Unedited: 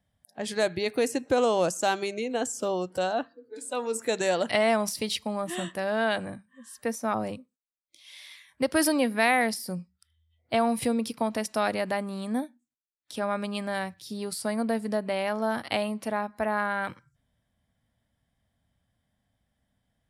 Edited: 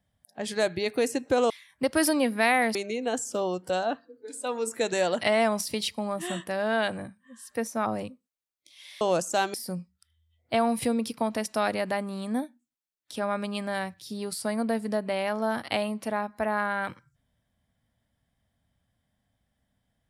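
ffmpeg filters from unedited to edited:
ffmpeg -i in.wav -filter_complex "[0:a]asplit=5[link_01][link_02][link_03][link_04][link_05];[link_01]atrim=end=1.502[link_06];[link_02]atrim=start=8.288:end=9.542[link_07];[link_03]atrim=start=2.028:end=8.292[link_08];[link_04]atrim=start=1.498:end=2.032[link_09];[link_05]atrim=start=9.538[link_10];[link_06][link_07]acrossfade=duration=0.004:curve1=hsin:curve2=hsin[link_11];[link_11][link_08]acrossfade=duration=0.004:curve1=hsin:curve2=hsin[link_12];[link_12][link_09]acrossfade=duration=0.004:curve1=hsin:curve2=hsin[link_13];[link_13][link_10]acrossfade=duration=0.004:curve1=hsin:curve2=hsin" out.wav

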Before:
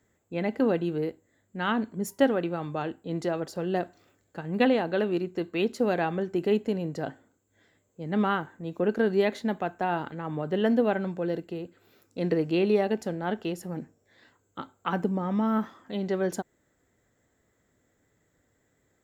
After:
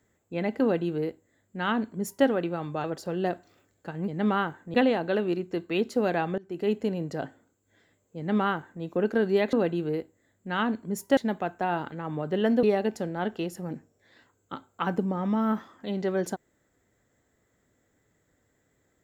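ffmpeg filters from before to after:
ffmpeg -i in.wav -filter_complex "[0:a]asplit=8[link_01][link_02][link_03][link_04][link_05][link_06][link_07][link_08];[link_01]atrim=end=2.842[link_09];[link_02]atrim=start=3.338:end=4.582[link_10];[link_03]atrim=start=8.008:end=8.672[link_11];[link_04]atrim=start=4.578:end=6.22,asetpts=PTS-STARTPTS,afade=type=out:start_time=1.638:duration=0.004:curve=hsin:silence=0.0707946[link_12];[link_05]atrim=start=6.22:end=9.372,asetpts=PTS-STARTPTS,afade=type=in:duration=0.39:silence=0.0707946[link_13];[link_06]atrim=start=0.618:end=2.262[link_14];[link_07]atrim=start=9.368:end=10.832[link_15];[link_08]atrim=start=12.688[link_16];[link_09][link_10]acrossfade=duration=0.004:curve1=hsin:curve2=hsin[link_17];[link_17][link_11]acrossfade=duration=0.004:curve1=hsin:curve2=hsin[link_18];[link_12][link_13]concat=n=2:v=0:a=1[link_19];[link_18][link_19]acrossfade=duration=0.004:curve1=hsin:curve2=hsin[link_20];[link_20][link_14]acrossfade=duration=0.004:curve1=hsin:curve2=hsin[link_21];[link_21][link_15]acrossfade=duration=0.004:curve1=hsin:curve2=hsin[link_22];[link_22][link_16]acrossfade=duration=0.004:curve1=hsin:curve2=hsin" out.wav

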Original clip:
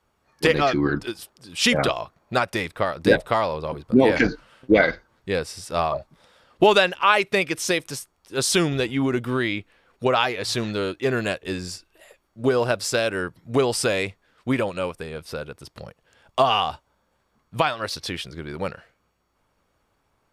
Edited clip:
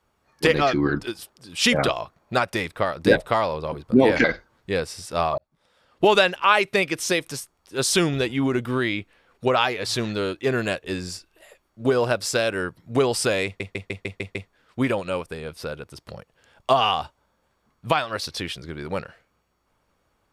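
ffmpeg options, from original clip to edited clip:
ffmpeg -i in.wav -filter_complex "[0:a]asplit=9[link_01][link_02][link_03][link_04][link_05][link_06][link_07][link_08][link_09];[link_01]atrim=end=4.242[link_10];[link_02]atrim=start=4.828:end=5.97,asetpts=PTS-STARTPTS,afade=type=out:start_time=1.138:duration=0.004:curve=hsin[link_11];[link_03]atrim=start=5.97:end=14.192,asetpts=PTS-STARTPTS,afade=type=in:duration=0.82[link_12];[link_04]atrim=start=14.038:end=14.192[link_13];[link_05]atrim=start=14.038:end=14.192[link_14];[link_06]atrim=start=14.038:end=14.192[link_15];[link_07]atrim=start=14.038:end=14.192[link_16];[link_08]atrim=start=14.038:end=14.192[link_17];[link_09]atrim=start=14.038[link_18];[link_11][link_12]concat=n=2:v=0:a=1[link_19];[link_10][link_19]acrossfade=duration=0.004:curve1=hsin:curve2=hsin[link_20];[link_20][link_13]acrossfade=duration=0.004:curve1=hsin:curve2=hsin[link_21];[link_21][link_14]acrossfade=duration=0.004:curve1=hsin:curve2=hsin[link_22];[link_22][link_15]acrossfade=duration=0.004:curve1=hsin:curve2=hsin[link_23];[link_23][link_16]acrossfade=duration=0.004:curve1=hsin:curve2=hsin[link_24];[link_24][link_17]acrossfade=duration=0.004:curve1=hsin:curve2=hsin[link_25];[link_25][link_18]acrossfade=duration=0.004:curve1=hsin:curve2=hsin" out.wav

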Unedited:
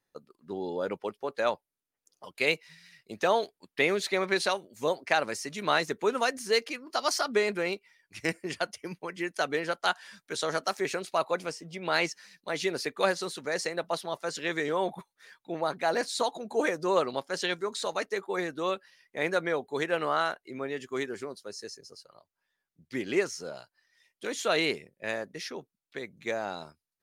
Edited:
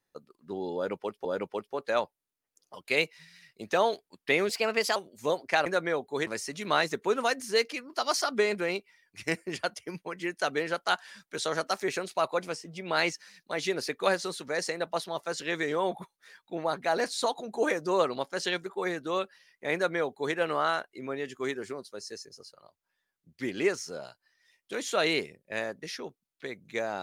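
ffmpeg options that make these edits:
ffmpeg -i in.wav -filter_complex "[0:a]asplit=7[link_01][link_02][link_03][link_04][link_05][link_06][link_07];[link_01]atrim=end=1.252[link_08];[link_02]atrim=start=0.748:end=3.994[link_09];[link_03]atrim=start=3.99:end=4.54,asetpts=PTS-STARTPTS,asetrate=51597,aresample=44100[link_10];[link_04]atrim=start=4.536:end=5.242[link_11];[link_05]atrim=start=19.258:end=19.872[link_12];[link_06]atrim=start=5.238:end=17.632[link_13];[link_07]atrim=start=18.178[link_14];[link_08][link_09]acrossfade=duration=0.004:curve1=hsin:curve2=hsin[link_15];[link_15][link_10]acrossfade=duration=0.004:curve1=hsin:curve2=hsin[link_16];[link_16][link_11]acrossfade=duration=0.004:curve1=hsin:curve2=hsin[link_17];[link_17][link_12]acrossfade=duration=0.004:curve1=hsin:curve2=hsin[link_18];[link_18][link_13]acrossfade=duration=0.004:curve1=hsin:curve2=hsin[link_19];[link_19][link_14]acrossfade=duration=0.004:curve1=hsin:curve2=hsin" out.wav

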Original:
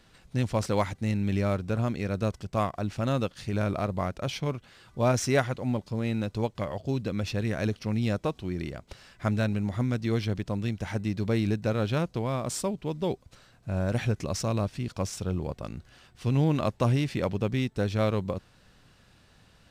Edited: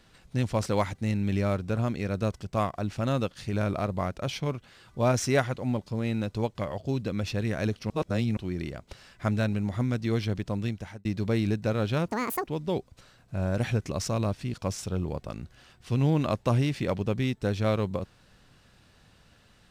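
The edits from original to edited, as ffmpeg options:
ffmpeg -i in.wav -filter_complex "[0:a]asplit=6[link_01][link_02][link_03][link_04][link_05][link_06];[link_01]atrim=end=7.902[link_07];[link_02]atrim=start=7.898:end=8.372,asetpts=PTS-STARTPTS,areverse[link_08];[link_03]atrim=start=8.368:end=11.05,asetpts=PTS-STARTPTS,afade=type=out:start_time=2.292:duration=0.39[link_09];[link_04]atrim=start=11.05:end=12.084,asetpts=PTS-STARTPTS,afade=type=in:duration=0.004:curve=hsin[link_10];[link_05]atrim=start=12.08:end=12.81,asetpts=PTS-STARTPTS,asetrate=83349,aresample=44100,atrim=end_sample=17033,asetpts=PTS-STARTPTS[link_11];[link_06]atrim=start=12.806[link_12];[link_07][link_08]acrossfade=duration=0.004:curve1=hsin:curve2=hsin[link_13];[link_09][link_10]concat=n=2:v=0:a=1[link_14];[link_13][link_14]acrossfade=duration=0.004:curve1=hsin:curve2=hsin[link_15];[link_15][link_11]acrossfade=duration=0.004:curve1=hsin:curve2=hsin[link_16];[link_16][link_12]acrossfade=duration=0.004:curve1=hsin:curve2=hsin" out.wav

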